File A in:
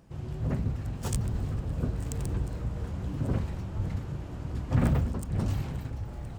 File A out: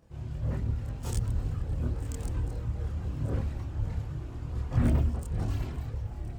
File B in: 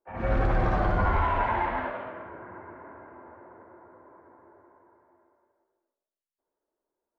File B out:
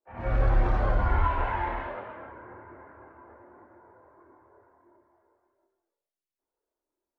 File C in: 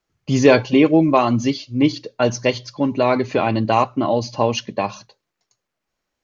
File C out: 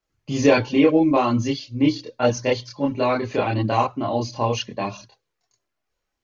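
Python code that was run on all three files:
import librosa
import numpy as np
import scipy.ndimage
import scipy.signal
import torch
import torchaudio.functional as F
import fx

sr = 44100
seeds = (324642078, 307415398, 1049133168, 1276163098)

y = fx.chorus_voices(x, sr, voices=6, hz=0.37, base_ms=27, depth_ms=2.1, mix_pct=55)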